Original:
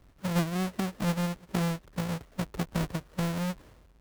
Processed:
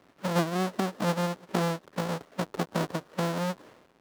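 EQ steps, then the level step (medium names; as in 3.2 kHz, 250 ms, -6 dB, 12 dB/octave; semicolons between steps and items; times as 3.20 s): high-pass 260 Hz 12 dB/octave; treble shelf 6.2 kHz -9.5 dB; dynamic bell 2.3 kHz, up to -5 dB, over -54 dBFS, Q 1.5; +6.5 dB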